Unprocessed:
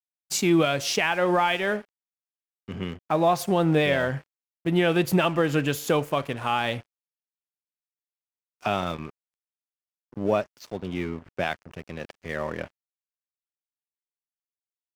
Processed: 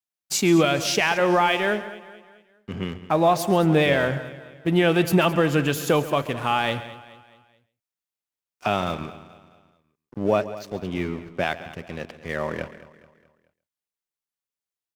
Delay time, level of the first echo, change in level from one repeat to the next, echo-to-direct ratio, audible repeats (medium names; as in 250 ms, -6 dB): 136 ms, -16.0 dB, no regular repeats, -12.5 dB, 5